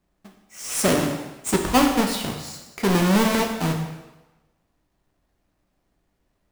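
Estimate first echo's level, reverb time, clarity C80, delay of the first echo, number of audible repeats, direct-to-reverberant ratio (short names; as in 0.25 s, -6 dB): none, 1.1 s, 7.5 dB, none, none, 2.0 dB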